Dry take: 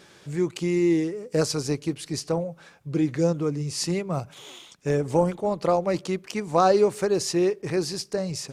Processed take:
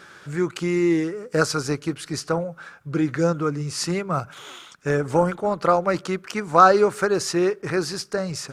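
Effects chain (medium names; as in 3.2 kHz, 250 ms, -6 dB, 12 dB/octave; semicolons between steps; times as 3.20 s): peaking EQ 1.4 kHz +14.5 dB 0.65 oct; trim +1 dB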